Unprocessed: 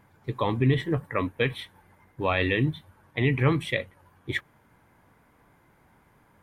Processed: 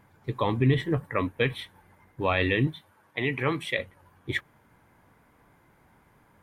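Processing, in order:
0:02.67–0:03.79: high-pass filter 380 Hz 6 dB per octave

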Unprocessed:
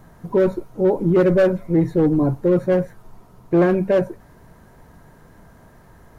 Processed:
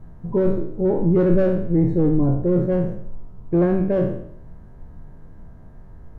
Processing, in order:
peak hold with a decay on every bin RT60 0.67 s
spectral tilt −3.5 dB per octave
level −8.5 dB

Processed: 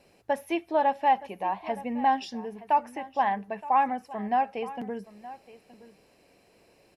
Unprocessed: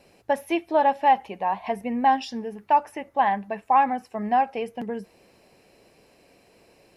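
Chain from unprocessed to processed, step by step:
single-tap delay 920 ms −17.5 dB
level −4 dB

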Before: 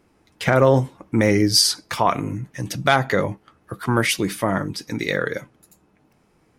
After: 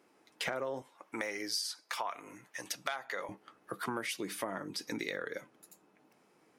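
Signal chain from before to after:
high-pass filter 320 Hz 12 dB per octave, from 0:00.82 720 Hz, from 0:03.29 270 Hz
downward compressor 8 to 1, threshold −30 dBFS, peak gain reduction 18 dB
level −4 dB

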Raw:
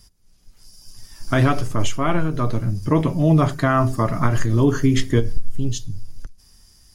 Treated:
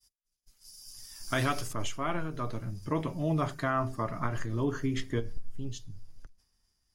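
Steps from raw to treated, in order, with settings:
low-shelf EQ 450 Hz −7 dB
downward expander −46 dBFS
high-shelf EQ 3,600 Hz +10 dB, from 0:01.73 −2.5 dB, from 0:03.70 −8.5 dB
level −8.5 dB

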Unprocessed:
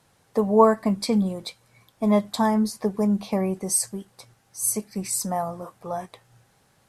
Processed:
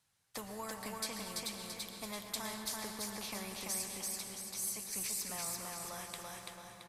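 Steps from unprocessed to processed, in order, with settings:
noise gate with hold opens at −50 dBFS
guitar amp tone stack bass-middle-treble 5-5-5
downward compressor 2 to 1, threshold −42 dBFS, peak gain reduction 10 dB
repeating echo 336 ms, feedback 27%, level −4 dB
on a send at −10 dB: convolution reverb RT60 2.8 s, pre-delay 108 ms
on the sum: every bin compressed towards the loudest bin 2 to 1
level +2.5 dB

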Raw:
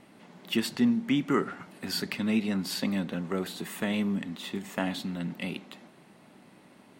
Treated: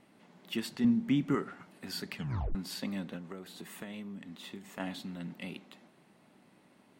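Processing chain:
0:00.84–0:01.35: low-shelf EQ 250 Hz +11.5 dB
0:02.15: tape stop 0.40 s
0:03.16–0:04.80: downward compressor 6 to 1, threshold −33 dBFS, peak gain reduction 8 dB
level −7.5 dB

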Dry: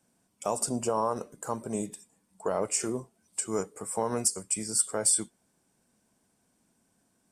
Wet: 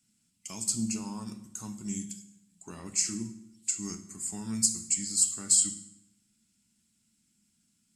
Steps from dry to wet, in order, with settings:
drawn EQ curve 300 Hz 0 dB, 550 Hz −24 dB, 2,900 Hz +5 dB
convolution reverb RT60 0.75 s, pre-delay 4 ms, DRR 7 dB
wrong playback speed 48 kHz file played as 44.1 kHz
level −4 dB

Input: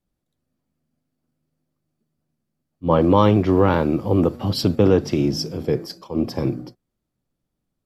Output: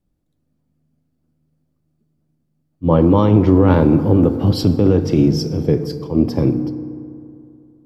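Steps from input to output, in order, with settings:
low-shelf EQ 500 Hz +10 dB
brickwall limiter −3 dBFS, peak gain reduction 7 dB
feedback delay network reverb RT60 2.6 s, high-frequency decay 0.4×, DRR 10.5 dB
level −1 dB

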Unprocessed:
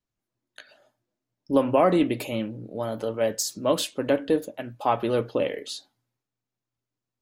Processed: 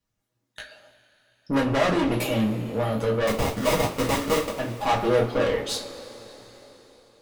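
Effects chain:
tube saturation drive 28 dB, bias 0.6
0:03.27–0:04.59: sample-rate reduction 1,600 Hz, jitter 20%
coupled-rooms reverb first 0.23 s, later 4.2 s, from −22 dB, DRR −2.5 dB
level +5.5 dB

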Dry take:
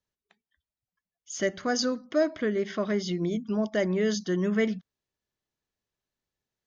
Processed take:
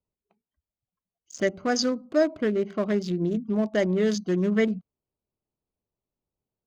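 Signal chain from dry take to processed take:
adaptive Wiener filter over 25 samples
level +3 dB

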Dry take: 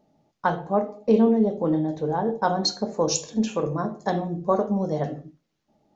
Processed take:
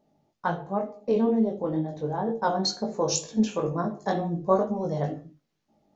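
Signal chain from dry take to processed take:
speech leveller 2 s
chorus effect 2.1 Hz, delay 17.5 ms, depth 3.7 ms

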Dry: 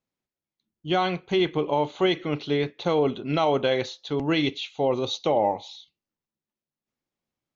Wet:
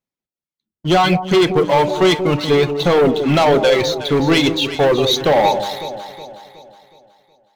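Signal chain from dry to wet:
reverb reduction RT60 1.7 s
hum removal 99.42 Hz, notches 6
leveller curve on the samples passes 3
delay that swaps between a low-pass and a high-pass 184 ms, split 860 Hz, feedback 66%, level −8 dB
on a send at −17 dB: convolution reverb, pre-delay 3 ms
on the sum: level +4 dB

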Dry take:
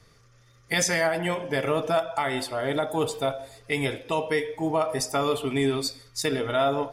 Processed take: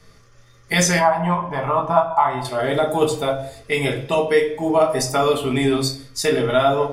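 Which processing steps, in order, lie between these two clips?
0:00.99–0:02.45: drawn EQ curve 110 Hz 0 dB, 470 Hz −11 dB, 1,000 Hz +12 dB, 1,500 Hz −6 dB, 6,200 Hz −17 dB
rectangular room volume 200 cubic metres, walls furnished, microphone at 1.3 metres
level +4 dB

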